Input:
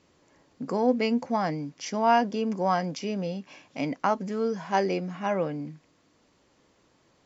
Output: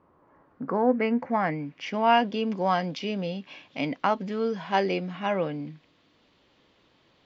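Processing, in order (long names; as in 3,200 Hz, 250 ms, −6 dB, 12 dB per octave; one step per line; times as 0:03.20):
low-pass filter sweep 1,100 Hz → 3,500 Hz, 0:00.16–0:02.41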